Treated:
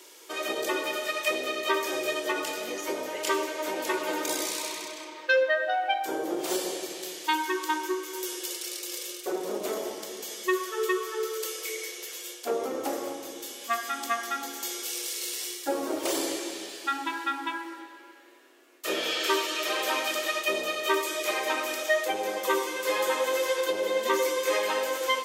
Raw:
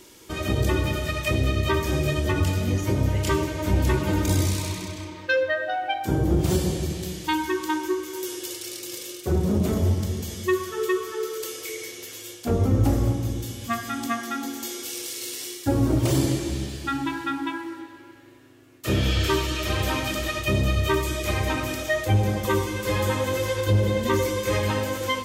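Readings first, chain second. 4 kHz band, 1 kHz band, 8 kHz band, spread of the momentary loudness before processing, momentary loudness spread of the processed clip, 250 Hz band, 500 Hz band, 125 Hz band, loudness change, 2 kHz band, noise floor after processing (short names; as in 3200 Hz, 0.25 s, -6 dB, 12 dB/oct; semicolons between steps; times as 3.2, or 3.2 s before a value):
0.0 dB, 0.0 dB, 0.0 dB, 10 LU, 8 LU, -10.0 dB, -1.5 dB, under -35 dB, -4.0 dB, 0.0 dB, -47 dBFS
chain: HPF 400 Hz 24 dB/oct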